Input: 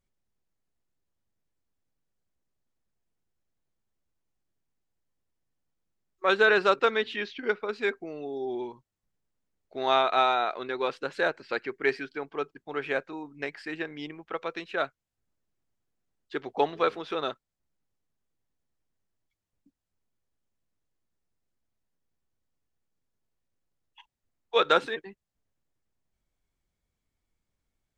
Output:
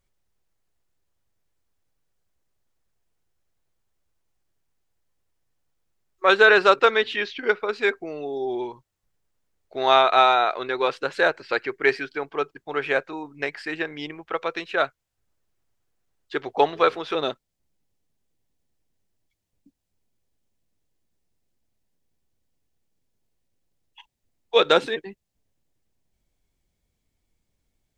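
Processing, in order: peaking EQ 220 Hz -6.5 dB 1 oct, from 17.15 s 1.3 kHz; trim +7 dB

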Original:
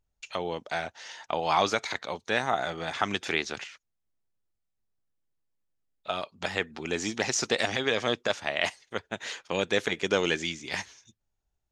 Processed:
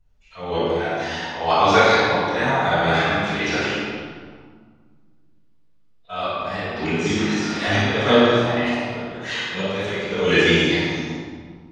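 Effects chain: coarse spectral quantiser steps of 15 dB; 7.11–7.67 s: high-pass 640 Hz; slow attack 231 ms; flutter echo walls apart 9.9 m, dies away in 0.58 s; reverberation RT60 1.8 s, pre-delay 3 ms, DRR -17.5 dB; trim -3.5 dB

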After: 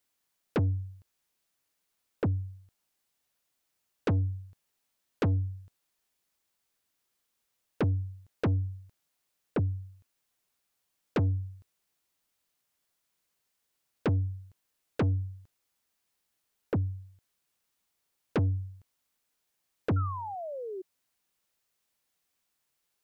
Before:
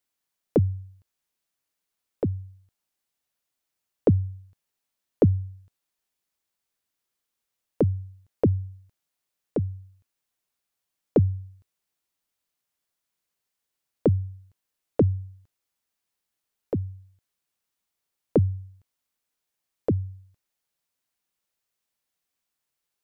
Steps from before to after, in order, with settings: saturation -27 dBFS, distortion -5 dB; painted sound fall, 19.96–20.82 s, 360–1400 Hz -41 dBFS; trim +3.5 dB

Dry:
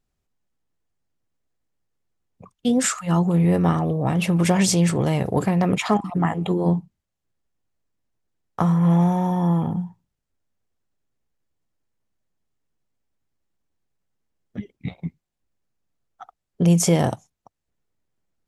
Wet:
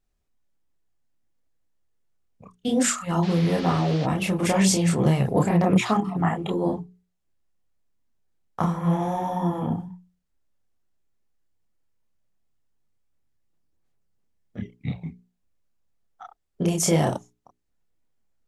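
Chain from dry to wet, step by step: chorus voices 6, 1.5 Hz, delay 29 ms, depth 3 ms; hum notches 60/120/180/240/300/360/420 Hz; 3.22–4.05 s: band noise 480–4700 Hz -42 dBFS; trim +2 dB

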